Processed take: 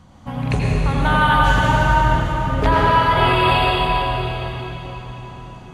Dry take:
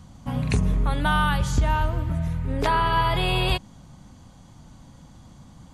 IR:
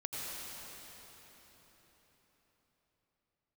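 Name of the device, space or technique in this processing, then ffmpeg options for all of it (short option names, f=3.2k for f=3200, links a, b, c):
cathedral: -filter_complex "[1:a]atrim=start_sample=2205[a];[0:a][a]afir=irnorm=-1:irlink=0,bass=f=250:g=-6,treble=f=4k:g=-9,volume=7dB"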